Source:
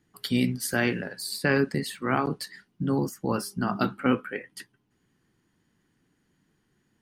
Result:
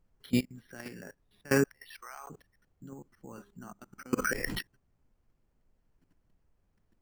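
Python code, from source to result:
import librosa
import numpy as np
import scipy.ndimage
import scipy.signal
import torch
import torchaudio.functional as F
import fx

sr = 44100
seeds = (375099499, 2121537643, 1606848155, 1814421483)

y = fx.highpass(x, sr, hz=690.0, slope=24, at=(1.64, 2.3))
y = fx.level_steps(y, sr, step_db=23)
y = fx.step_gate(y, sr, bpm=149, pattern='x.xx.xxxxxx..', floor_db=-24.0, edge_ms=4.5)
y = fx.dmg_noise_colour(y, sr, seeds[0], colour='brown', level_db=-70.0)
y = np.repeat(scipy.signal.resample_poly(y, 1, 6), 6)[:len(y)]
y = fx.env_flatten(y, sr, amount_pct=70, at=(4.17, 4.59), fade=0.02)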